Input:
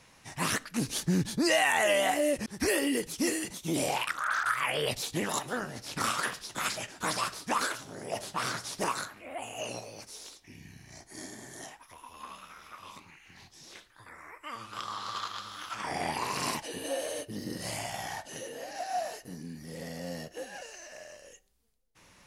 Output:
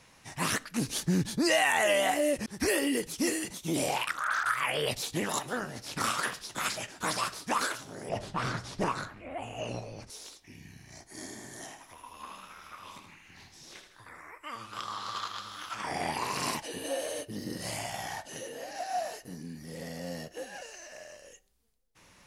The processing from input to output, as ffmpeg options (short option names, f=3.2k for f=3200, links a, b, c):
-filter_complex "[0:a]asettb=1/sr,asplit=3[a][b][c];[a]atrim=end=8.094[d];[b]atrim=start=8.09:end=10.1,asetpts=PTS-STARTPTS,afade=t=in:d=0.004:c=qsin,afade=t=out:st=2.006:d=0.004:c=qsin,aemphasis=mode=reproduction:type=bsi[e];[c]atrim=start=10.096[f];[d][e]acrossfade=d=0.004:c1=hsin:c2=qsin[g];[g][f]acrossfade=d=0.004:c1=qsin:c2=hsin,asettb=1/sr,asplit=3[h][i][j];[h]atrim=end=11.134[k];[i]atrim=start=11.13:end=14.21,asetpts=PTS-STARTPTS,afade=t=in:d=0.004:c=qsin,afade=t=out:st=3.076:d=0.004:c=qsin,aecho=1:1:79|158|237|316|395|474:0.398|0.191|0.0917|0.044|0.0211|0.0101,atrim=end_sample=135828[l];[j]atrim=start=14.206[m];[k][l]acrossfade=d=0.004:c1=hsin:c2=qsin[n];[n][m]acrossfade=d=0.004:c1=qsin:c2=hsin"